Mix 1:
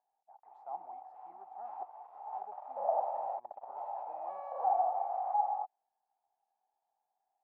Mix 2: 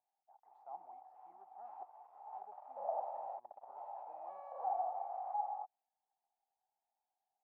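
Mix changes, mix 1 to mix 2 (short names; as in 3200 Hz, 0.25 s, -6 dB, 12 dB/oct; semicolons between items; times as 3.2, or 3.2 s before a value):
speech -7.0 dB; background -7.5 dB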